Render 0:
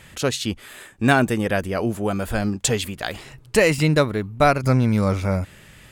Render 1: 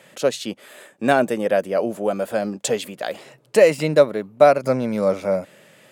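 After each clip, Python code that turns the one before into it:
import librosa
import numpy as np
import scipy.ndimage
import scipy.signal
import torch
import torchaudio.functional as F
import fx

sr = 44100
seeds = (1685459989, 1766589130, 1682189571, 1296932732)

y = scipy.signal.sosfilt(scipy.signal.butter(4, 160.0, 'highpass', fs=sr, output='sos'), x)
y = fx.peak_eq(y, sr, hz=570.0, db=12.0, octaves=0.69)
y = y * 10.0 ** (-4.0 / 20.0)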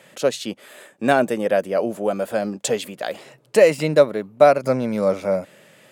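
y = x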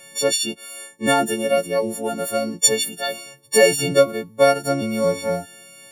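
y = fx.freq_snap(x, sr, grid_st=4)
y = fx.notch_cascade(y, sr, direction='falling', hz=1.2)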